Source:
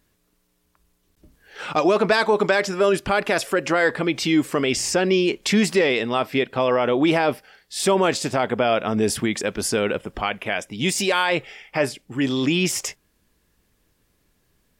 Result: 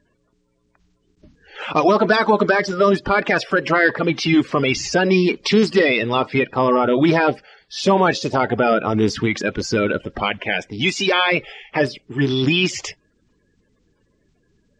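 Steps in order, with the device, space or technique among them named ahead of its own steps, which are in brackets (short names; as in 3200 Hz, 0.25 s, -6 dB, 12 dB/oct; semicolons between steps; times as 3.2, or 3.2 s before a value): clip after many re-uploads (LPF 5500 Hz 24 dB/oct; bin magnitudes rounded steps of 30 dB); 1.91–3.11 bell 2400 Hz -5.5 dB 0.52 oct; gain +4 dB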